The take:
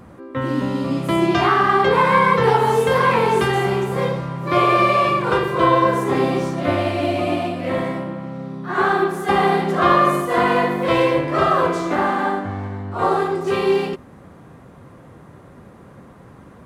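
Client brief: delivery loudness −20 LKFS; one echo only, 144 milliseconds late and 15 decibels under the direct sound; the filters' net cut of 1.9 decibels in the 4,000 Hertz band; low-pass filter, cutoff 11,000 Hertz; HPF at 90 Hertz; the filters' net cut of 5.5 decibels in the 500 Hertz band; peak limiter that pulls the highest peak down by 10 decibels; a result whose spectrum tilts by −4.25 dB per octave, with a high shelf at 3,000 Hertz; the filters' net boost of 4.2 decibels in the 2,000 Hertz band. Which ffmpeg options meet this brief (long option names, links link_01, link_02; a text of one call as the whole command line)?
ffmpeg -i in.wav -af "highpass=90,lowpass=11000,equalizer=frequency=500:width_type=o:gain=-7.5,equalizer=frequency=2000:width_type=o:gain=8,highshelf=frequency=3000:gain=-4,equalizer=frequency=4000:width_type=o:gain=-3.5,alimiter=limit=-12.5dB:level=0:latency=1,aecho=1:1:144:0.178,volume=2dB" out.wav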